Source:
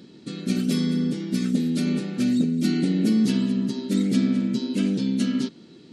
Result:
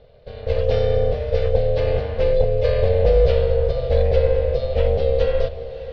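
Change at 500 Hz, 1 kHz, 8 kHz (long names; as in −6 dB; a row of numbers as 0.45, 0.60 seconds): +18.0 dB, can't be measured, below −20 dB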